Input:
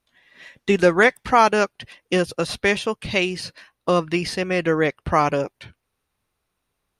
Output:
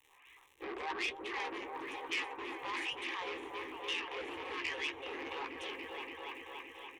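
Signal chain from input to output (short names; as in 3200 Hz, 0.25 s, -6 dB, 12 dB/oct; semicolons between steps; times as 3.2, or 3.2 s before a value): tape start at the beginning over 0.98 s; spectral gate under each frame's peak -20 dB weak; wah 1.1 Hz 310–3300 Hz, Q 2.8; transient shaper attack -7 dB, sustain +8 dB; crackle 210/s -64 dBFS; bell 3900 Hz +7 dB 2.8 oct; compressor 3:1, threshold -53 dBFS, peak gain reduction 19 dB; high shelf 5200 Hz -5.5 dB; fixed phaser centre 960 Hz, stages 8; doubler 15 ms -7 dB; repeats that get brighter 0.286 s, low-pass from 400 Hz, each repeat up 1 oct, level 0 dB; core saturation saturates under 3400 Hz; gain +16.5 dB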